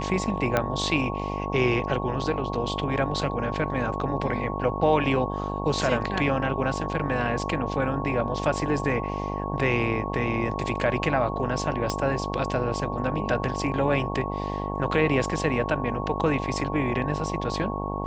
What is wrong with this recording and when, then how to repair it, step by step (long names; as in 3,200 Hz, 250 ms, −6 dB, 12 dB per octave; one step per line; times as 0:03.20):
mains buzz 50 Hz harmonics 19 −31 dBFS
whistle 1,100 Hz −33 dBFS
0:00.57: click −9 dBFS
0:11.90: click −13 dBFS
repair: click removal
notch filter 1,100 Hz, Q 30
hum removal 50 Hz, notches 19